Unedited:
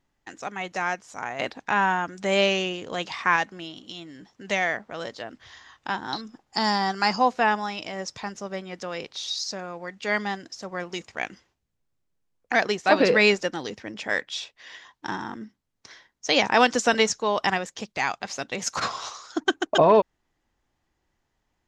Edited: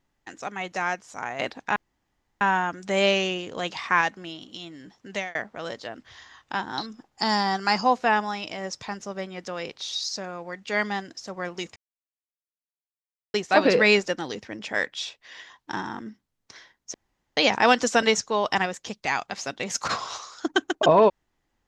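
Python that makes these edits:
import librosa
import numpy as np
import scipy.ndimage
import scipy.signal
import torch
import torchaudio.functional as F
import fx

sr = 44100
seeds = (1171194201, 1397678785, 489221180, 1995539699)

y = fx.edit(x, sr, fx.insert_room_tone(at_s=1.76, length_s=0.65),
    fx.fade_out_span(start_s=4.44, length_s=0.26),
    fx.silence(start_s=11.11, length_s=1.58),
    fx.insert_room_tone(at_s=16.29, length_s=0.43), tone=tone)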